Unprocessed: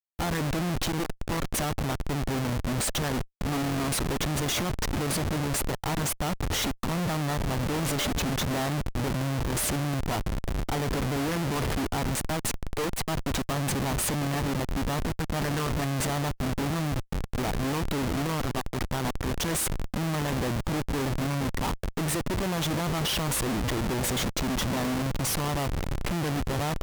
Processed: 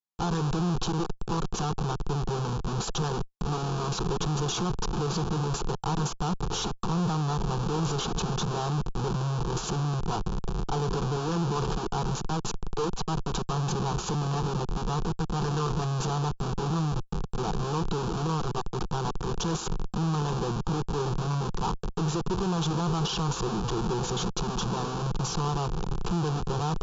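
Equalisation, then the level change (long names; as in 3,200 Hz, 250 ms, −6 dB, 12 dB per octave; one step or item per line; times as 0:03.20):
linear-phase brick-wall low-pass 7,400 Hz
high-shelf EQ 4,600 Hz −4.5 dB
phaser with its sweep stopped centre 400 Hz, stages 8
+3.0 dB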